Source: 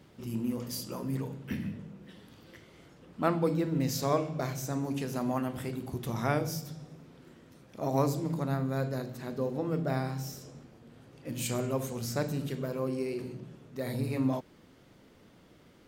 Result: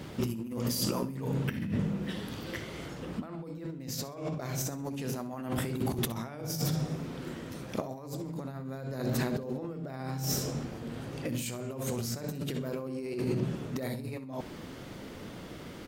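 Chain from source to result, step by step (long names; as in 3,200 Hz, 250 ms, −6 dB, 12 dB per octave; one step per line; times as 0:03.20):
compressor whose output falls as the input rises −42 dBFS, ratio −1
on a send: repeating echo 65 ms, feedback 26%, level −16 dB
on the sum: level +6.5 dB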